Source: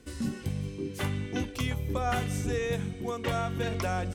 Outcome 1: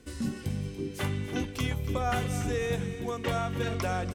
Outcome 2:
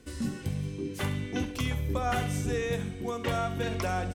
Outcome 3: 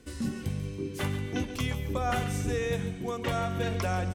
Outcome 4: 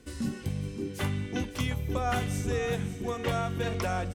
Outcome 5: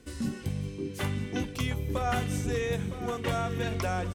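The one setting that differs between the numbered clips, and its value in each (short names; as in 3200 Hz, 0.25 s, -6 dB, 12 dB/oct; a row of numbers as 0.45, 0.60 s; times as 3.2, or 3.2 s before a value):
feedback echo, time: 288, 68, 140, 557, 961 ms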